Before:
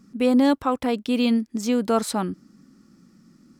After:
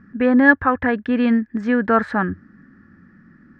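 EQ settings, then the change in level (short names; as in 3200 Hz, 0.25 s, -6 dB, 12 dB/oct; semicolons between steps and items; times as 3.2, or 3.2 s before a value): synth low-pass 1700 Hz, resonance Q 14; bell 89 Hz +12.5 dB 0.36 oct; low shelf 160 Hz +7 dB; +1.0 dB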